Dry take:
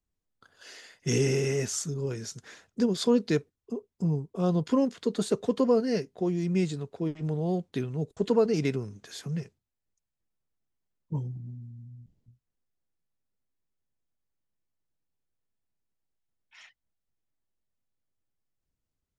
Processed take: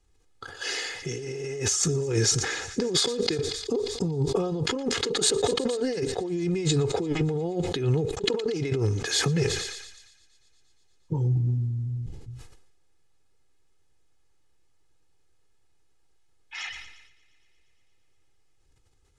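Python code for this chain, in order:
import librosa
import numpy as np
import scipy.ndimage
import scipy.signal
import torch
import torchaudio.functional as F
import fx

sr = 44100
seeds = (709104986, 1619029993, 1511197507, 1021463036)

p1 = scipy.signal.sosfilt(scipy.signal.butter(4, 9800.0, 'lowpass', fs=sr, output='sos'), x)
p2 = p1 + 0.7 * np.pad(p1, (int(2.4 * sr / 1000.0), 0))[:len(p1)]
p3 = fx.over_compress(p2, sr, threshold_db=-36.0, ratio=-1.0)
p4 = p3 + fx.echo_thinned(p3, sr, ms=117, feedback_pct=82, hz=660.0, wet_db=-24.0, dry=0)
p5 = fx.sustainer(p4, sr, db_per_s=50.0)
y = p5 * 10.0 ** (7.5 / 20.0)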